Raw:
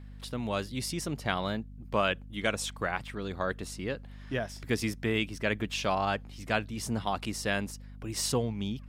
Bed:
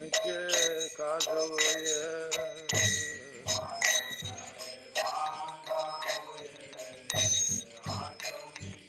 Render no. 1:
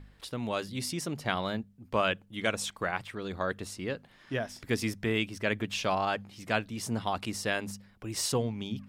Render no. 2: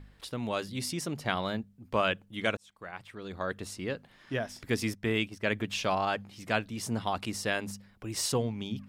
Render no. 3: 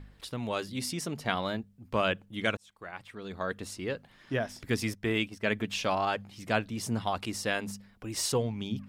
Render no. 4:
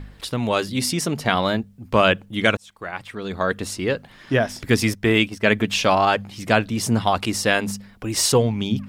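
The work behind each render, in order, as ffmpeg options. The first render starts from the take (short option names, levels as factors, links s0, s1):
-af "bandreject=f=50:t=h:w=4,bandreject=f=100:t=h:w=4,bandreject=f=150:t=h:w=4,bandreject=f=200:t=h:w=4,bandreject=f=250:t=h:w=4"
-filter_complex "[0:a]asplit=3[s0][s1][s2];[s0]afade=t=out:st=4.81:d=0.02[s3];[s1]agate=range=0.398:threshold=0.00891:ratio=16:release=100:detection=peak,afade=t=in:st=4.81:d=0.02,afade=t=out:st=5.49:d=0.02[s4];[s2]afade=t=in:st=5.49:d=0.02[s5];[s3][s4][s5]amix=inputs=3:normalize=0,asplit=2[s6][s7];[s6]atrim=end=2.57,asetpts=PTS-STARTPTS,afade=t=out:st=2.566:d=0.004:c=hsin[s8];[s7]atrim=start=2.57,asetpts=PTS-STARTPTS,afade=t=in:d=1.13[s9];[s8][s9]concat=n=2:v=0:a=1"
-af "aphaser=in_gain=1:out_gain=1:delay=4.6:decay=0.22:speed=0.45:type=sinusoidal"
-af "volume=3.76,alimiter=limit=0.794:level=0:latency=1"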